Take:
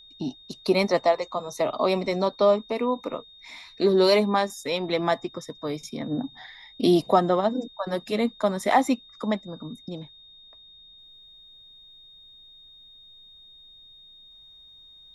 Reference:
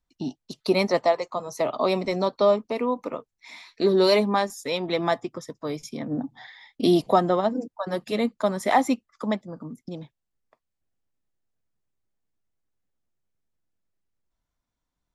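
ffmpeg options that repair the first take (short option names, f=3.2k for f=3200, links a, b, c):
-af "bandreject=f=3.7k:w=30,agate=range=-21dB:threshold=-43dB,asetnsamples=n=441:p=0,asendcmd='10.98 volume volume -10dB',volume=0dB"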